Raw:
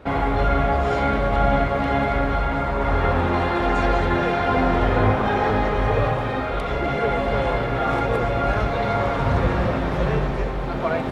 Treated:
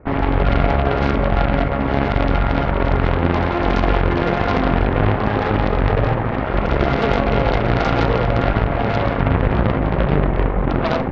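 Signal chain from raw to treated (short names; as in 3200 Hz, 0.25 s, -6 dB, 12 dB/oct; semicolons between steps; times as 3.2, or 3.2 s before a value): Chebyshev low-pass 2200 Hz, order 4; low shelf 440 Hz +10.5 dB; AGC gain up to 11.5 dB; limiter -5.5 dBFS, peak gain reduction 4.5 dB; added harmonics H 2 -8 dB, 3 -18 dB, 4 -19 dB, 6 -14 dB, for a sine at -5.5 dBFS; Schroeder reverb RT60 0.31 s, combs from 26 ms, DRR 15.5 dB; gain -2.5 dB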